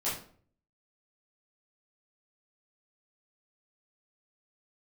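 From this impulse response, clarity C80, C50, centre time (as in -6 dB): 9.5 dB, 4.5 dB, 40 ms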